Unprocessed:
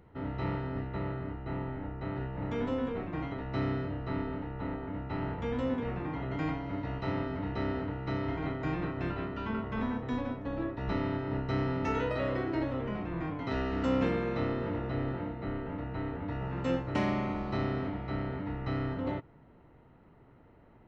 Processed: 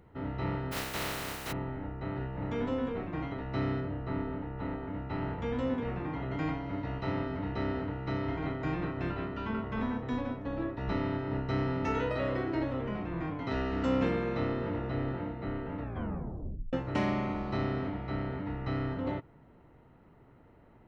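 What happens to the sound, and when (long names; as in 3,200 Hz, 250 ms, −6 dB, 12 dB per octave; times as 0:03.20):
0:00.71–0:01.51: compressing power law on the bin magnitudes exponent 0.26
0:03.80–0:04.58: high-shelf EQ 3,400 Hz −8.5 dB
0:15.80: tape stop 0.93 s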